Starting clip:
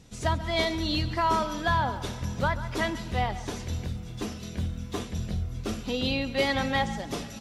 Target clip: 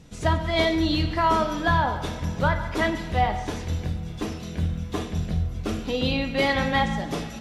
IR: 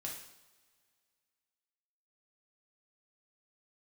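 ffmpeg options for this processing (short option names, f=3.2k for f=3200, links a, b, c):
-filter_complex "[0:a]asplit=2[a][b];[1:a]atrim=start_sample=2205,lowpass=3.8k[c];[b][c]afir=irnorm=-1:irlink=0,volume=0dB[d];[a][d]amix=inputs=2:normalize=0"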